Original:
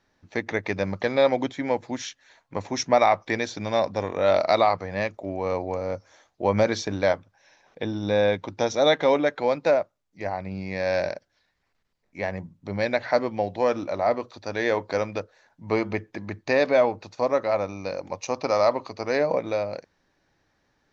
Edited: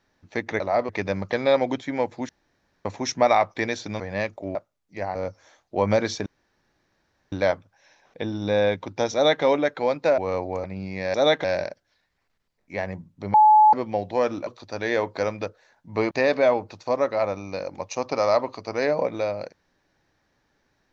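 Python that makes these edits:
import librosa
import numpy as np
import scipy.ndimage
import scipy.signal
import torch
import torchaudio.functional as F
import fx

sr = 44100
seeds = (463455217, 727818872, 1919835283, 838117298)

y = fx.edit(x, sr, fx.room_tone_fill(start_s=2.0, length_s=0.56),
    fx.cut(start_s=3.71, length_s=1.1),
    fx.swap(start_s=5.36, length_s=0.46, other_s=9.79, other_length_s=0.6),
    fx.insert_room_tone(at_s=6.93, length_s=1.06),
    fx.duplicate(start_s=8.74, length_s=0.3, to_s=10.89),
    fx.bleep(start_s=12.79, length_s=0.39, hz=856.0, db=-10.5),
    fx.move(start_s=13.92, length_s=0.29, to_s=0.6),
    fx.cut(start_s=15.85, length_s=0.58), tone=tone)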